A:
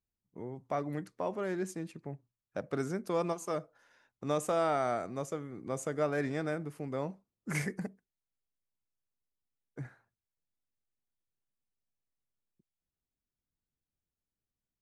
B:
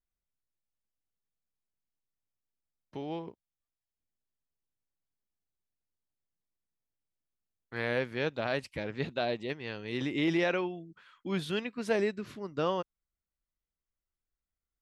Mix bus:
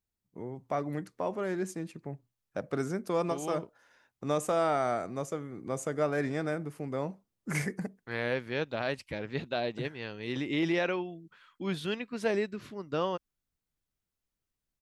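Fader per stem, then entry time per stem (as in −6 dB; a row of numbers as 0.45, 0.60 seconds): +2.0, −0.5 decibels; 0.00, 0.35 seconds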